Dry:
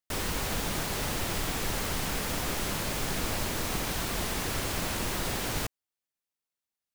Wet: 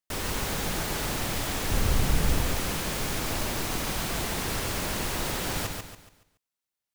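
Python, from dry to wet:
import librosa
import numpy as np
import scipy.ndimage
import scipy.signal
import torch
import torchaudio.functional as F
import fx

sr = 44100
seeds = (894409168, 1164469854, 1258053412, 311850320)

y = fx.low_shelf(x, sr, hz=200.0, db=12.0, at=(1.71, 2.42))
y = fx.echo_feedback(y, sr, ms=141, feedback_pct=37, wet_db=-4.5)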